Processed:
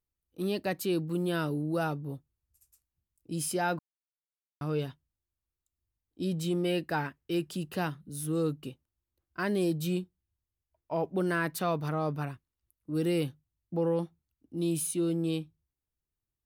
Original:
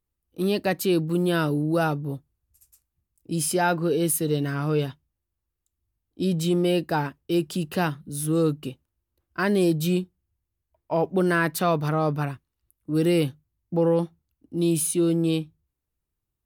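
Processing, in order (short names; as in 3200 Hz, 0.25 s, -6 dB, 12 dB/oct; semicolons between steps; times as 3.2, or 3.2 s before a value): 3.79–4.61 mute; 6.65–7.5 bell 1900 Hz +6.5 dB 1 oct; gain -7.5 dB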